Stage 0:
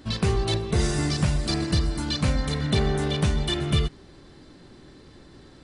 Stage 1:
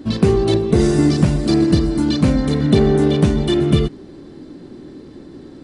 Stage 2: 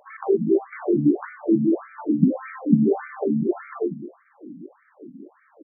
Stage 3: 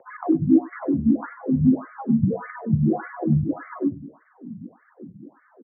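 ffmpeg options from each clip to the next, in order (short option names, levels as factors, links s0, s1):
-af "equalizer=f=290:t=o:w=2:g=14.5,volume=1.12"
-filter_complex "[0:a]asplit=2[s0][s1];[s1]adelay=186,lowpass=f=2000:p=1,volume=0.178,asplit=2[s2][s3];[s3]adelay=186,lowpass=f=2000:p=1,volume=0.44,asplit=2[s4][s5];[s5]adelay=186,lowpass=f=2000:p=1,volume=0.44,asplit=2[s6][s7];[s7]adelay=186,lowpass=f=2000:p=1,volume=0.44[s8];[s0][s2][s4][s6][s8]amix=inputs=5:normalize=0,afftfilt=real='re*between(b*sr/1024,200*pow(1700/200,0.5+0.5*sin(2*PI*1.7*pts/sr))/1.41,200*pow(1700/200,0.5+0.5*sin(2*PI*1.7*pts/sr))*1.41)':imag='im*between(b*sr/1024,200*pow(1700/200,0.5+0.5*sin(2*PI*1.7*pts/sr))/1.41,200*pow(1700/200,0.5+0.5*sin(2*PI*1.7*pts/sr))*1.41)':win_size=1024:overlap=0.75"
-af "aphaser=in_gain=1:out_gain=1:delay=4.1:decay=0.44:speed=1.2:type=triangular,aecho=1:1:97:0.0794,highpass=f=170:t=q:w=0.5412,highpass=f=170:t=q:w=1.307,lowpass=f=2100:t=q:w=0.5176,lowpass=f=2100:t=q:w=0.7071,lowpass=f=2100:t=q:w=1.932,afreqshift=-70"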